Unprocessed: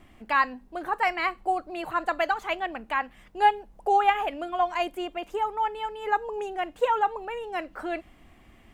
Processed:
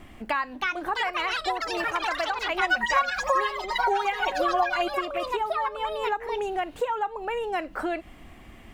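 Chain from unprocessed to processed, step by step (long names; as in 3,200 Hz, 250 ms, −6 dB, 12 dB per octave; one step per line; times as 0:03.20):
delay with pitch and tempo change per echo 394 ms, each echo +5 semitones, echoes 3
downward compressor 6 to 1, threshold −32 dBFS, peak gain reduction 18 dB
0:02.54–0:04.90: comb filter 5.4 ms, depth 99%
level +7 dB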